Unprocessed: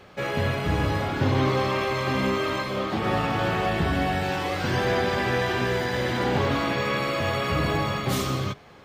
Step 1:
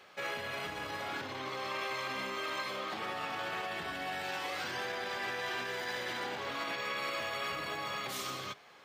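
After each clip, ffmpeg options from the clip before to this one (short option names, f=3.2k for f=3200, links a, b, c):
-af "alimiter=limit=-20.5dB:level=0:latency=1:release=68,highpass=f=1.1k:p=1,volume=-3dB"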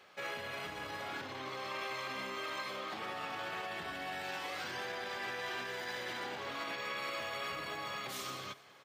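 -af "aecho=1:1:204|408|612|816:0.0841|0.0463|0.0255|0.014,volume=-3dB"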